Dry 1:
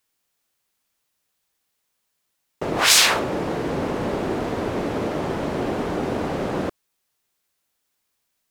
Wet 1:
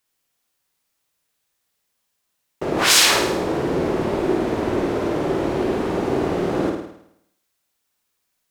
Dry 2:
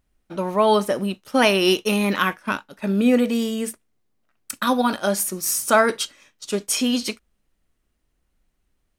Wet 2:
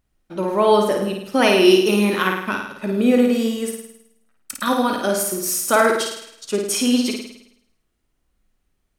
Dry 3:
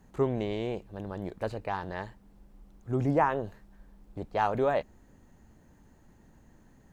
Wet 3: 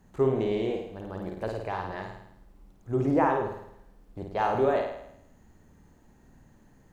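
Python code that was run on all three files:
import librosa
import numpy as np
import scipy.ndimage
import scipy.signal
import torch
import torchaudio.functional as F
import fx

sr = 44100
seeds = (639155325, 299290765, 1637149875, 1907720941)

y = fx.room_flutter(x, sr, wall_m=9.1, rt60_s=0.76)
y = fx.dynamic_eq(y, sr, hz=360.0, q=3.0, threshold_db=-37.0, ratio=4.0, max_db=6)
y = F.gain(torch.from_numpy(y), -1.0).numpy()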